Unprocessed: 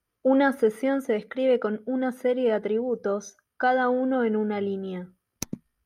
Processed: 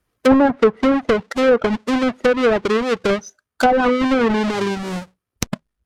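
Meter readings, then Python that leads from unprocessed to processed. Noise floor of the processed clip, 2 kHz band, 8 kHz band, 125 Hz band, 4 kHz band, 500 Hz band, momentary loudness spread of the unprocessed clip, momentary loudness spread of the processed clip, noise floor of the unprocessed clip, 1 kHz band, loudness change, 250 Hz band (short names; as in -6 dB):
-81 dBFS, +8.0 dB, +7.5 dB, n/a, +14.0 dB, +7.0 dB, 13 LU, 12 LU, -82 dBFS, +8.0 dB, +7.5 dB, +8.5 dB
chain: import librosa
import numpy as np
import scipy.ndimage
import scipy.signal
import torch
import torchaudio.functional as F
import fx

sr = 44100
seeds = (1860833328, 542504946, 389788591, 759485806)

y = fx.halfwave_hold(x, sr)
y = fx.dereverb_blind(y, sr, rt60_s=0.57)
y = fx.env_lowpass_down(y, sr, base_hz=1100.0, full_db=-15.0)
y = F.gain(torch.from_numpy(y), 5.5).numpy()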